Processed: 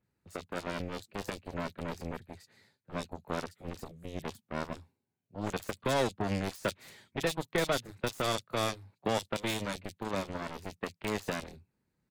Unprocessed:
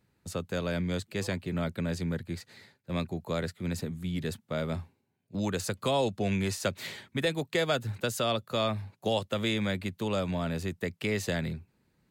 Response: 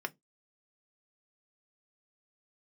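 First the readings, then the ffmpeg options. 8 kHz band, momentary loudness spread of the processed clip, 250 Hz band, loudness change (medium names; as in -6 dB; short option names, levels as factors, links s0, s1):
-2.5 dB, 12 LU, -6.0 dB, -4.0 dB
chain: -filter_complex "[0:a]aeval=exprs='0.158*(cos(1*acos(clip(val(0)/0.158,-1,1)))-cos(1*PI/2))+0.00398*(cos(5*acos(clip(val(0)/0.158,-1,1)))-cos(5*PI/2))+0.01*(cos(6*acos(clip(val(0)/0.158,-1,1)))-cos(6*PI/2))+0.0355*(cos(7*acos(clip(val(0)/0.158,-1,1)))-cos(7*PI/2))+0.00562*(cos(8*acos(clip(val(0)/0.158,-1,1)))-cos(8*PI/2))':c=same,acrossover=split=3200[s0][s1];[s1]adelay=30[s2];[s0][s2]amix=inputs=2:normalize=0,volume=0.794"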